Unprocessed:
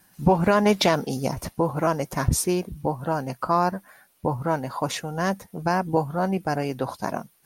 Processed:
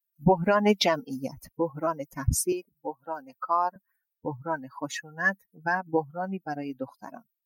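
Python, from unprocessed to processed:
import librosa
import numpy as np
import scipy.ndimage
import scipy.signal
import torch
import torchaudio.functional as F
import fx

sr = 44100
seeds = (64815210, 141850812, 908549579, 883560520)

y = fx.bin_expand(x, sr, power=2.0)
y = fx.highpass(y, sr, hz=380.0, slope=12, at=(2.52, 3.76))
y = fx.peak_eq(y, sr, hz=1700.0, db=14.5, octaves=0.22, at=(4.52, 5.75))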